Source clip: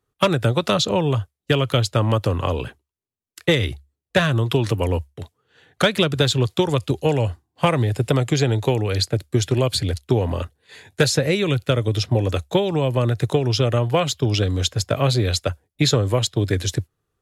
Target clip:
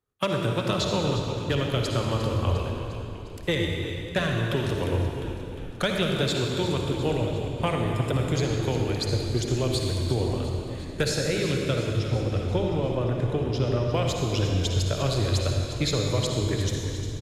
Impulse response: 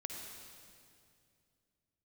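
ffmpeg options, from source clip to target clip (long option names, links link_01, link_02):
-filter_complex "[0:a]asettb=1/sr,asplit=3[link_01][link_02][link_03];[link_01]atrim=end=11.854[link_04];[link_02]atrim=start=11.85:end=13.94,asetpts=PTS-STARTPTS,afade=type=in:duration=0.004:curve=qsin,afade=type=out:start_time=2.086:duration=0.004:curve=qsin,highshelf=frequency=3900:gain=-11.5[link_05];[link_03]atrim=start=13.936[link_06];[link_04][link_05]acrossfade=duration=0.004:curve1=hsin:curve2=qsin[link_07];[link_07][link_06]acrossfade=duration=0.004:curve1=qsin:curve2=hsin,asplit=8[link_08][link_09][link_10][link_11][link_12][link_13][link_14][link_15];[link_09]adelay=353,afreqshift=-42,volume=-12dB[link_16];[link_10]adelay=706,afreqshift=-84,volume=-16.4dB[link_17];[link_11]adelay=1059,afreqshift=-126,volume=-20.9dB[link_18];[link_12]adelay=1412,afreqshift=-168,volume=-25.3dB[link_19];[link_13]adelay=1765,afreqshift=-210,volume=-29.7dB[link_20];[link_14]adelay=2118,afreqshift=-252,volume=-34.2dB[link_21];[link_15]adelay=2471,afreqshift=-294,volume=-38.6dB[link_22];[link_08][link_16][link_17][link_18][link_19][link_20][link_21][link_22]amix=inputs=8:normalize=0[link_23];[1:a]atrim=start_sample=2205[link_24];[link_23][link_24]afir=irnorm=-1:irlink=0,volume=-5dB"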